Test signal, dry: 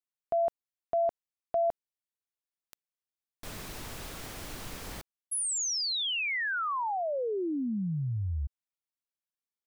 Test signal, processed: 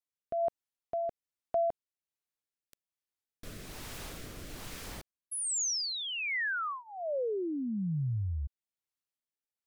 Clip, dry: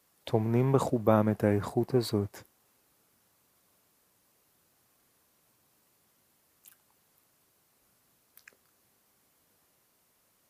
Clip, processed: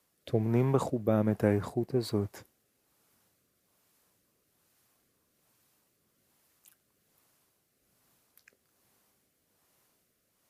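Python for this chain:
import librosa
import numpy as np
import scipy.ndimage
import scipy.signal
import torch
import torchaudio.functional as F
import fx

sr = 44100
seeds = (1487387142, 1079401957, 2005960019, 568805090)

y = fx.rotary(x, sr, hz=1.2)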